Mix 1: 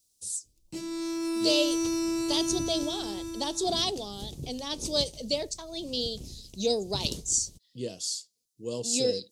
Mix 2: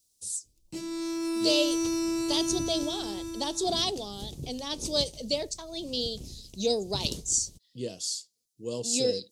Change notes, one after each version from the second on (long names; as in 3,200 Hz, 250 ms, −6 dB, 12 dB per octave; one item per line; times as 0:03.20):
nothing changed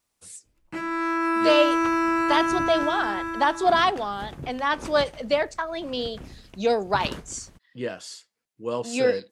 master: remove drawn EQ curve 110 Hz 0 dB, 270 Hz −4 dB, 420 Hz −3 dB, 1,600 Hz −26 dB, 3,900 Hz +5 dB, 5,900 Hz +10 dB, 11,000 Hz +8 dB